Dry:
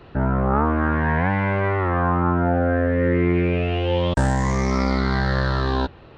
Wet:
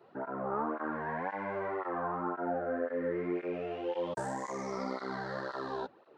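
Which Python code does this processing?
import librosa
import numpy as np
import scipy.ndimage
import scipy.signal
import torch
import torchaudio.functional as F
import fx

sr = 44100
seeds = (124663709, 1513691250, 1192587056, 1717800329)

y = scipy.signal.sosfilt(scipy.signal.butter(2, 370.0, 'highpass', fs=sr, output='sos'), x)
y = fx.peak_eq(y, sr, hz=3000.0, db=-12.0, octaves=1.9)
y = fx.flanger_cancel(y, sr, hz=1.9, depth_ms=4.1)
y = F.gain(torch.from_numpy(y), -6.0).numpy()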